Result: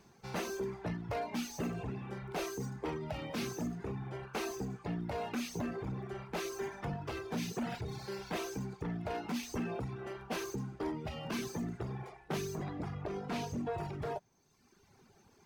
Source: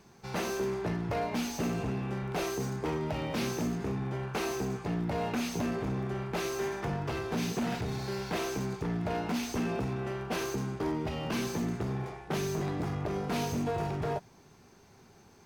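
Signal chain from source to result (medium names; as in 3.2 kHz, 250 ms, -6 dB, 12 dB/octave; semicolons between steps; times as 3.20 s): reverb removal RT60 1.2 s; 12.64–13.72 s: treble shelf 8.9 kHz -12 dB; trim -3.5 dB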